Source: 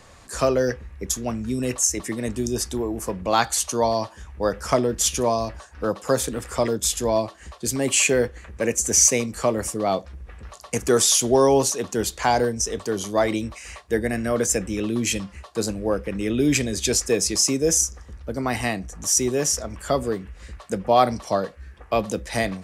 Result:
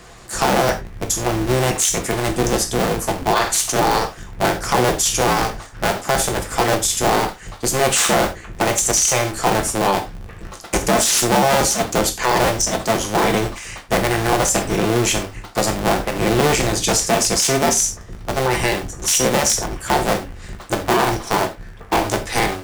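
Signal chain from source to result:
sub-harmonics by changed cycles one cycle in 2, inverted
reverb whose tail is shaped and stops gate 120 ms falling, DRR 4.5 dB
boost into a limiter +11.5 dB
level −6 dB

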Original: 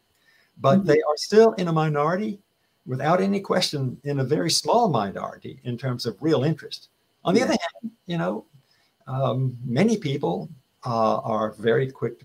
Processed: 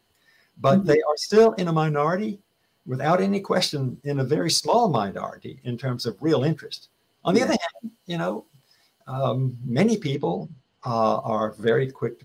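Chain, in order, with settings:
0:07.74–0:09.25: bass and treble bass −3 dB, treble +5 dB
hard clipping −9 dBFS, distortion −26 dB
0:10.15–0:10.87: high-frequency loss of the air 100 metres

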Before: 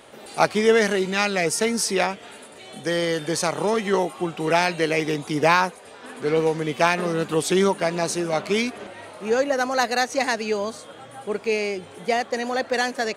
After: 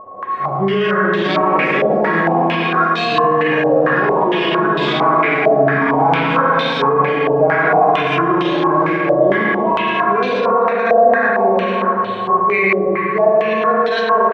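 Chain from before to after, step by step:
steady tone 1,200 Hz −28 dBFS
harmonic and percussive parts rebalanced percussive −18 dB
flanger 0.57 Hz, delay 9.2 ms, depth 7.2 ms, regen +63%
single-tap delay 105 ms −5 dB
spring reverb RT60 3 s, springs 33/59 ms, chirp 30 ms, DRR −5 dB
delay with pitch and tempo change per echo 793 ms, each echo +7 semitones, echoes 3, each echo −6 dB
wrong playback speed 48 kHz file played as 44.1 kHz
boost into a limiter +15 dB
low-pass on a step sequencer 4.4 Hz 640–3,700 Hz
level −8.5 dB

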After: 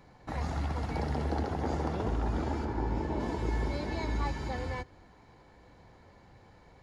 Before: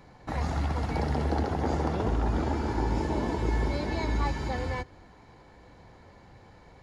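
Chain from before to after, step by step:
0:02.64–0:03.19: high-shelf EQ 3,200 Hz → 5,100 Hz −11.5 dB
level −4 dB

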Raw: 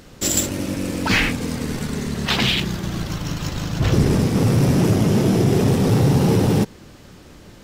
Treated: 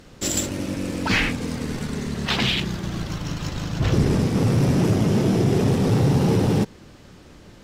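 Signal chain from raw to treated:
high-shelf EQ 12,000 Hz −11 dB
level −2.5 dB

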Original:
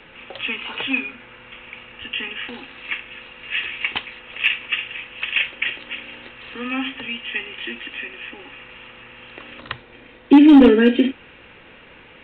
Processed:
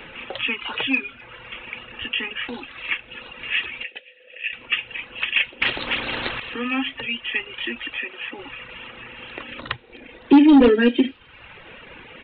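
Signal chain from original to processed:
0:07.97–0:08.39: Bessel high-pass filter 180 Hz, order 2
reverb reduction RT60 0.94 s
in parallel at −0.5 dB: downward compressor, threshold −35 dBFS, peak gain reduction 25 dB
0:03.83–0:04.53: on the sum: formant filter e
soft clipping −5 dBFS, distortion −20 dB
on a send: delay with a high-pass on its return 256 ms, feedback 59%, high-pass 3,400 Hz, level −19 dB
on the sum: downsampling to 11,025 Hz
0:05.61–0:06.40: every bin compressed towards the loudest bin 2 to 1

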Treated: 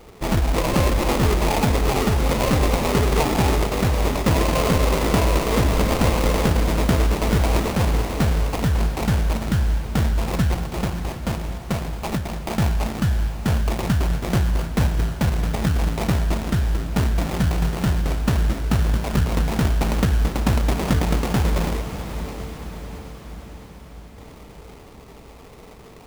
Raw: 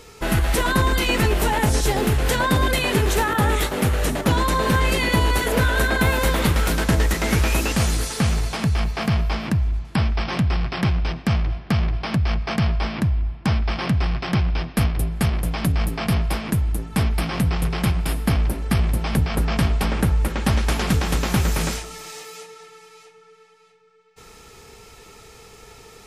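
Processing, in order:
0:10.54–0:12.56: high-pass filter 210 Hz 6 dB per octave
sample-rate reduction 1,600 Hz, jitter 20%
on a send: feedback delay with all-pass diffusion 628 ms, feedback 63%, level −11.5 dB

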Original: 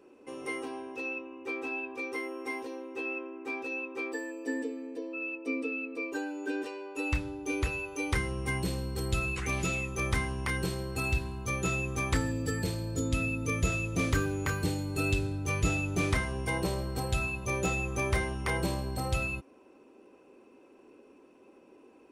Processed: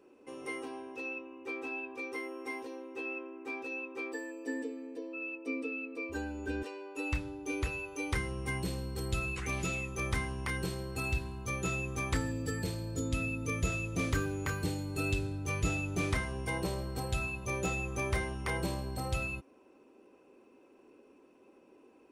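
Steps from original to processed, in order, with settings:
0:06.09–0:06.63: sub-octave generator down 2 octaves, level −1 dB
level −3.5 dB

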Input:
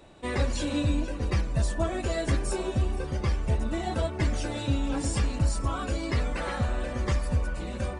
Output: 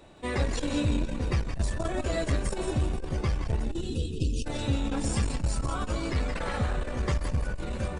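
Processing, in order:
time-frequency box erased 0:03.64–0:04.45, 520–2,500 Hz
echo with shifted repeats 171 ms, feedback 39%, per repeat −66 Hz, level −7 dB
saturating transformer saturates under 120 Hz

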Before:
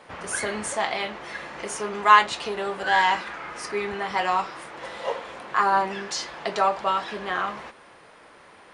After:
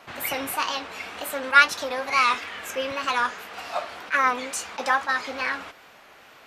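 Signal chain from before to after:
wrong playback speed 33 rpm record played at 45 rpm
tape wow and flutter 89 cents
level that may rise only so fast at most 380 dB per second

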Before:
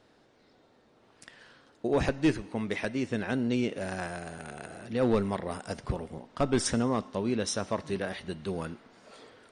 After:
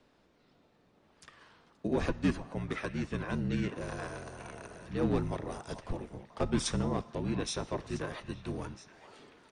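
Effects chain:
frequency shifter −37 Hz
pitch-shifted copies added −7 semitones −2 dB
echo through a band-pass that steps 434 ms, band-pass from 860 Hz, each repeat 1.4 octaves, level −10 dB
level −6 dB

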